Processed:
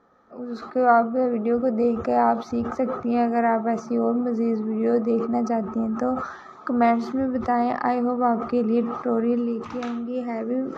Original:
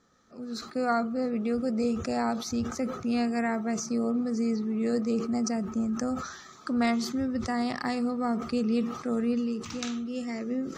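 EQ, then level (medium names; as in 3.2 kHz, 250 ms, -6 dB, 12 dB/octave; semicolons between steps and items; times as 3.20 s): FFT filter 140 Hz 0 dB, 840 Hz +13 dB, 8.1 kHz -17 dB; 0.0 dB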